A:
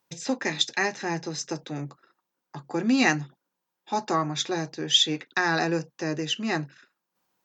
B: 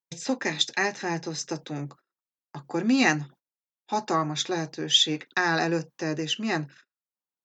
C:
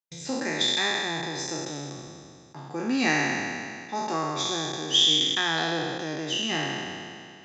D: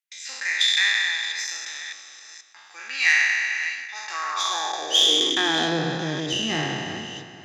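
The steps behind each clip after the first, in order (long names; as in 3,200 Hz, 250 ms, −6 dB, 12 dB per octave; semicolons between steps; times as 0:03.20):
noise gate −49 dBFS, range −25 dB
peak hold with a decay on every bin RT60 2.26 s; level −6 dB
delay that plays each chunk backwards 482 ms, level −12 dB; harmonic generator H 4 −21 dB, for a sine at −8 dBFS; high-pass filter sweep 2,000 Hz → 94 Hz, 0:04.03–0:06.30; level +2 dB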